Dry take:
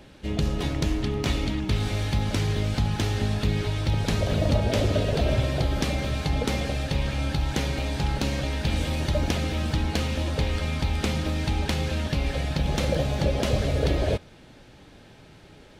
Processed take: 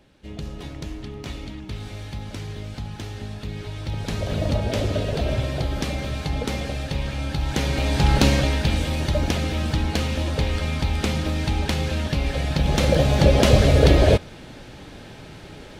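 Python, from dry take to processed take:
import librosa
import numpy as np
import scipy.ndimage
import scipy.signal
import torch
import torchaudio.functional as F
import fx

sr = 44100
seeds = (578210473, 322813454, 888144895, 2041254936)

y = fx.gain(x, sr, db=fx.line((3.44, -8.0), (4.4, -0.5), (7.28, -0.5), (8.24, 10.0), (8.82, 2.5), (12.33, 2.5), (13.36, 9.0)))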